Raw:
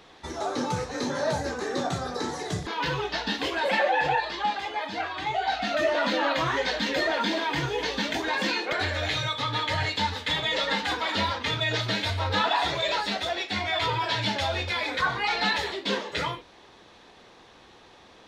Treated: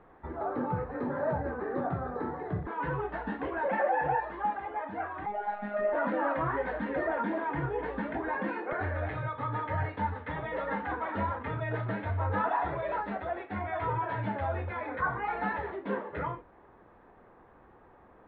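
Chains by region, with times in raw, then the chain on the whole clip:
5.26–5.93 Bessel low-pass 11000 Hz + robotiser 206 Hz
whole clip: LPF 1600 Hz 24 dB/oct; low shelf 63 Hz +8 dB; gain -3.5 dB

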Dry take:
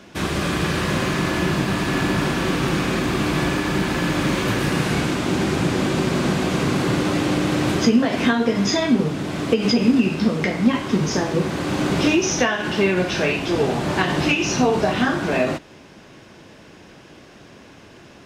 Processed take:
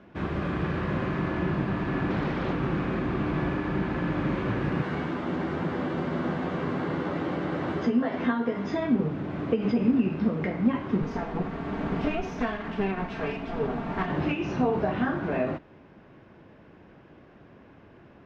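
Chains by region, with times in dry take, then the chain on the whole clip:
2.1–2.53 bell 3900 Hz +7 dB 0.79 oct + Doppler distortion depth 0.85 ms
4.82–8.72 low shelf 160 Hz -11 dB + notch 2500 Hz, Q 11 + doubler 12 ms -5.5 dB
11.02–14.1 minimum comb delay 4.4 ms + notch 520 Hz, Q 7.2
whole clip: LPF 1800 Hz 12 dB/oct; low shelf 210 Hz +3 dB; gain -7.5 dB

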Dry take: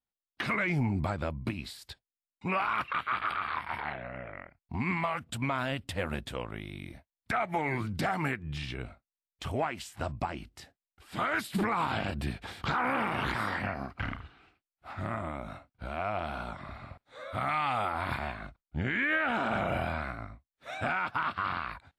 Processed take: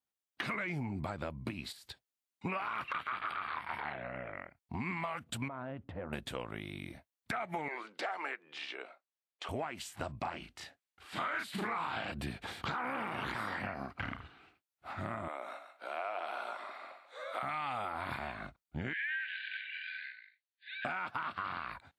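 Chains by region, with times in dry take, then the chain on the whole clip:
1.72–3.1 transient shaper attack +5 dB, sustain +10 dB + upward expander, over -42 dBFS
5.48–6.13 LPF 1100 Hz + compressor 2.5:1, threshold -38 dBFS
7.68–9.49 HPF 420 Hz 24 dB/oct + air absorption 84 m
10.19–12.12 LPF 3300 Hz 6 dB/oct + tilt shelf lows -5 dB, about 810 Hz + doubler 36 ms -2 dB
15.28–17.43 HPF 390 Hz 24 dB/oct + thinning echo 0.139 s, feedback 17%, high-pass 650 Hz, level -7.5 dB
18.93–20.85 brick-wall FIR band-pass 1500–4800 Hz + notch 2200 Hz, Q 20
whole clip: HPF 130 Hz 6 dB/oct; notch 5200 Hz, Q 24; compressor 4:1, threshold -35 dBFS

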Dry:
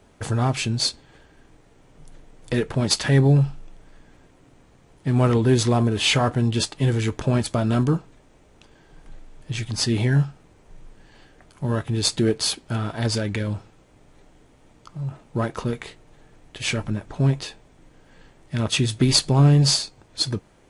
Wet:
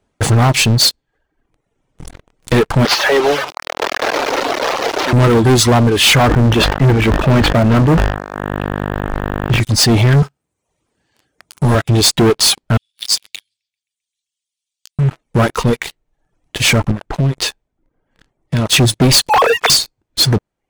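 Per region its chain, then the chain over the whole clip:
2.85–5.13 delta modulation 32 kbps, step -20 dBFS + HPF 450 Hz 24 dB/oct + tilt -2.5 dB/oct
6.27–9.6 LPF 3000 Hz 24 dB/oct + buzz 50 Hz, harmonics 36, -36 dBFS -3 dB/oct + sustainer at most 51 dB/s
10.22–11.75 HPF 58 Hz 24 dB/oct + high shelf 5600 Hz +8.5 dB
12.77–14.99 inverse Chebyshev high-pass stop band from 1300 Hz, stop band 50 dB + darkening echo 0.131 s, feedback 76%, low-pass 4500 Hz, level -14.5 dB
16.91–18.69 compressor 4:1, threshold -27 dBFS + mismatched tape noise reduction decoder only
19.29–19.7 sine-wave speech + Chebyshev high-pass 450 Hz, order 8
whole clip: reverb removal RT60 1 s; sample leveller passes 5; gain -1 dB

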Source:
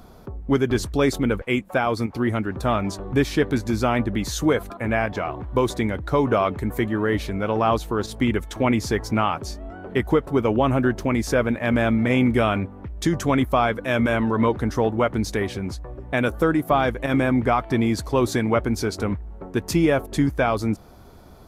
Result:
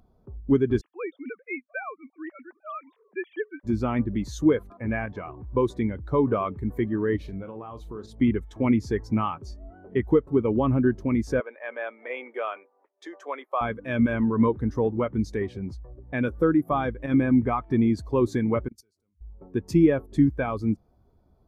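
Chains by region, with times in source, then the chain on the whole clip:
0.81–3.64 sine-wave speech + HPF 1200 Hz 6 dB/oct
7.16–8.12 compressor 5:1, threshold -26 dBFS + doubler 42 ms -9.5 dB
11.4–13.61 HPF 470 Hz 24 dB/oct + high shelf 5100 Hz -10 dB
18.68–19.21 pre-emphasis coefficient 0.8 + level quantiser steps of 17 dB + three-band expander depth 70%
whole clip: notch 1400 Hz, Q 20; dynamic EQ 670 Hz, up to -6 dB, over -36 dBFS, Q 2.7; spectral expander 1.5:1

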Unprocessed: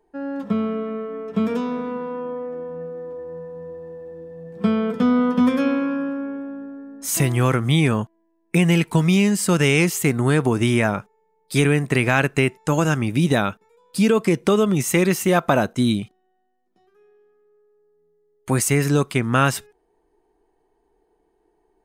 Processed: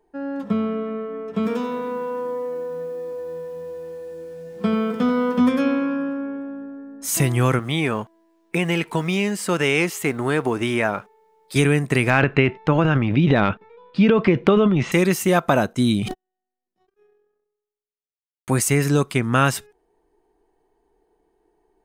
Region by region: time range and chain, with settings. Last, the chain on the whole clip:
1.34–5.39 tone controls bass -4 dB, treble 0 dB + lo-fi delay 87 ms, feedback 35%, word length 8-bit, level -10.5 dB
7.59–11.56 G.711 law mismatch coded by mu + tone controls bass -10 dB, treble -7 dB
12.1–14.92 LPF 3400 Hz 24 dB/oct + transient shaper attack +3 dB, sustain +10 dB
15.8–18.53 gate -56 dBFS, range -56 dB + sustainer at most 51 dB/s
whole clip: dry

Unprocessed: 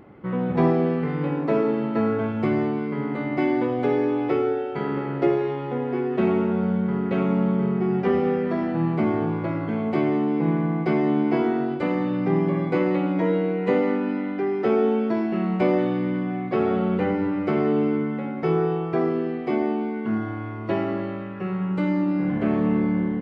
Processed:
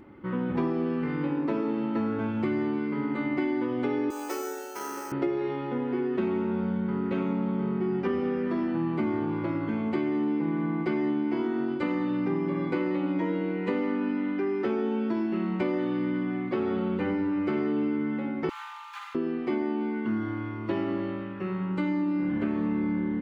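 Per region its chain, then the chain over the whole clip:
4.1–5.12 HPF 610 Hz + notch 2100 Hz, Q 15 + careless resampling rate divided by 6×, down none, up hold
18.49–19.15 median filter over 25 samples + steep high-pass 840 Hz 96 dB/oct + frequency shift +33 Hz
whole clip: bell 640 Hz -10.5 dB 0.32 oct; comb 3.3 ms, depth 43%; compressor, threshold -22 dBFS; gain -2 dB

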